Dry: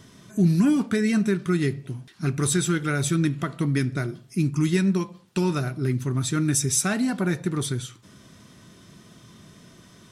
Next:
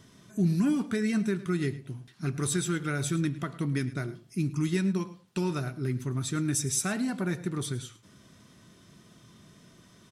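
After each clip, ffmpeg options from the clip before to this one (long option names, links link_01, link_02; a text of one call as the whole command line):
ffmpeg -i in.wav -af "aecho=1:1:107:0.133,volume=-6dB" out.wav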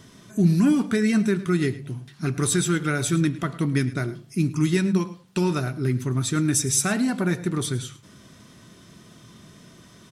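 ffmpeg -i in.wav -af "bandreject=frequency=47.5:width_type=h:width=4,bandreject=frequency=95:width_type=h:width=4,bandreject=frequency=142.5:width_type=h:width=4,bandreject=frequency=190:width_type=h:width=4,volume=7dB" out.wav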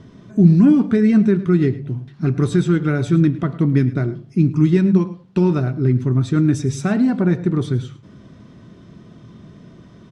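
ffmpeg -i in.wav -af "lowpass=4700,tiltshelf=frequency=970:gain=6.5,volume=1.5dB" out.wav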